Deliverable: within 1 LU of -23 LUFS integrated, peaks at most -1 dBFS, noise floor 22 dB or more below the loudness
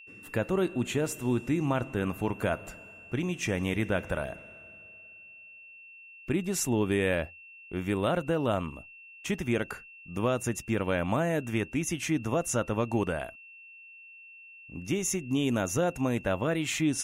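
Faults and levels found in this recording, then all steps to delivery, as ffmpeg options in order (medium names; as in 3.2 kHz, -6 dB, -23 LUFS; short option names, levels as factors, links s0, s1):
steady tone 2.7 kHz; tone level -48 dBFS; loudness -30.0 LUFS; peak level -15.0 dBFS; loudness target -23.0 LUFS
-> -af "bandreject=f=2700:w=30"
-af "volume=2.24"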